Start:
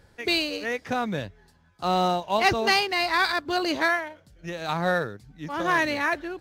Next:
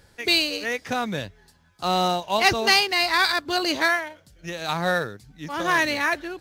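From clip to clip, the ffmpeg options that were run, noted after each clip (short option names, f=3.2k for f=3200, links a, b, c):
-af "highshelf=f=2.6k:g=8"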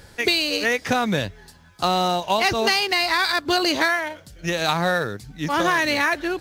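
-filter_complex "[0:a]asplit=2[a][b];[b]alimiter=limit=-13.5dB:level=0:latency=1,volume=-2dB[c];[a][c]amix=inputs=2:normalize=0,acompressor=threshold=-21dB:ratio=6,volume=4dB"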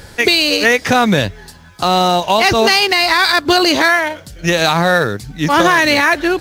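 -af "alimiter=level_in=11dB:limit=-1dB:release=50:level=0:latency=1,volume=-1dB"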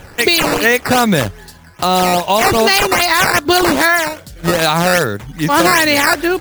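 -af "acrusher=samples=8:mix=1:aa=0.000001:lfo=1:lforange=12.8:lforate=2.5"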